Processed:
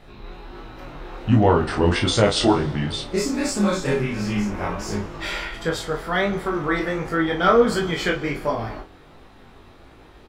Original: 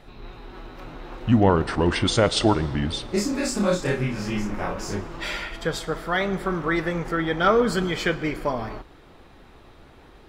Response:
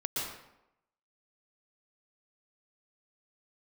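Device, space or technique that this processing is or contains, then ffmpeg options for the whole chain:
double-tracked vocal: -filter_complex "[0:a]asplit=2[link_01][link_02];[link_02]adelay=34,volume=-6.5dB[link_03];[link_01][link_03]amix=inputs=2:normalize=0,flanger=delay=18.5:depth=3.5:speed=1.4,volume=4dB"

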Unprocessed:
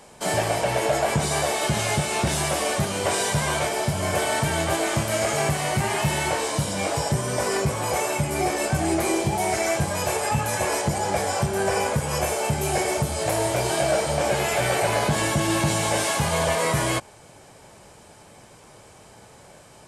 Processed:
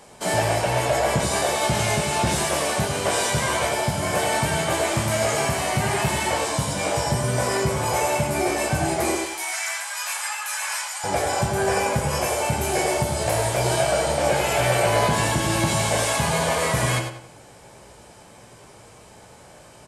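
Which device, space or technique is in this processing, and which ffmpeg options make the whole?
slapback doubling: -filter_complex "[0:a]asettb=1/sr,asplit=3[link_01][link_02][link_03];[link_01]atrim=end=9.154[link_04];[link_02]atrim=start=9.15:end=11.04,asetpts=PTS-STARTPTS,afade=type=in:duration=0.004:curve=qsin,afade=type=out:start_time=1.886:duration=0.004:curve=qsin,highpass=frequency=1100:width=0.5412,highpass=frequency=1100:width=1.3066[link_05];[link_03]atrim=start=11.036[link_06];[link_04][link_05]acrossfade=duration=0.004:curve1=hsin:curve2=qsin[link_07];[link_07][link_06]acrossfade=duration=0.004:curve1=qsin:curve2=hsin,asplit=3[link_08][link_09][link_10];[link_09]adelay=17,volume=-8.5dB[link_11];[link_10]adelay=105,volume=-9.5dB[link_12];[link_08][link_11][link_12]amix=inputs=3:normalize=0,asplit=2[link_13][link_14];[link_14]adelay=90,lowpass=frequency=4300:poles=1,volume=-8dB,asplit=2[link_15][link_16];[link_16]adelay=90,lowpass=frequency=4300:poles=1,volume=0.38,asplit=2[link_17][link_18];[link_18]adelay=90,lowpass=frequency=4300:poles=1,volume=0.38,asplit=2[link_19][link_20];[link_20]adelay=90,lowpass=frequency=4300:poles=1,volume=0.38[link_21];[link_13][link_15][link_17][link_19][link_21]amix=inputs=5:normalize=0"

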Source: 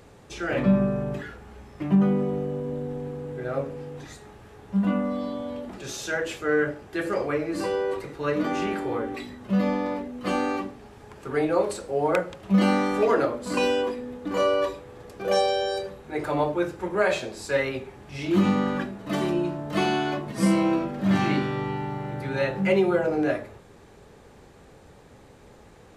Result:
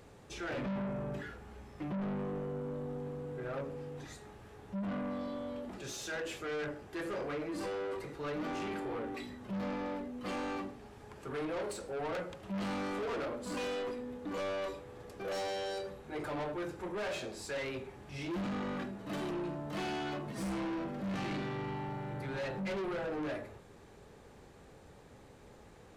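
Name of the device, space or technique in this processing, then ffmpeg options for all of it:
saturation between pre-emphasis and de-emphasis: -af "highshelf=frequency=9100:gain=11,asoftclip=type=tanh:threshold=-29dB,highshelf=frequency=9100:gain=-11,volume=-5.5dB"

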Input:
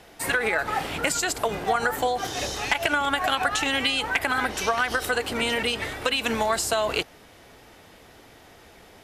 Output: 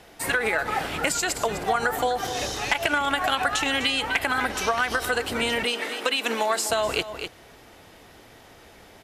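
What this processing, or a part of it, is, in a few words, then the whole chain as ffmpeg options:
ducked delay: -filter_complex "[0:a]asplit=3[link_01][link_02][link_03];[link_02]adelay=252,volume=-7.5dB[link_04];[link_03]apad=whole_len=409722[link_05];[link_04][link_05]sidechaincompress=threshold=-28dB:ratio=8:attack=6.2:release=182[link_06];[link_01][link_06]amix=inputs=2:normalize=0,asettb=1/sr,asplit=3[link_07][link_08][link_09];[link_07]atrim=end=5.644[link_10];[link_08]atrim=start=5.64:end=6.7,asetpts=PTS-STARTPTS,afade=type=in:duration=0.004:curve=qsin,afade=type=out:start_time=1.056:duration=0.004:curve=qsin,highpass=frequency=240:width=0.5412,highpass=frequency=240:width=1.3066[link_11];[link_09]atrim=start=6.696[link_12];[link_10][link_11]acrossfade=duration=0.004:curve1=hsin:curve2=qsin[link_13];[link_13][link_12]acrossfade=duration=0.004:curve1=qsin:curve2=hsin"

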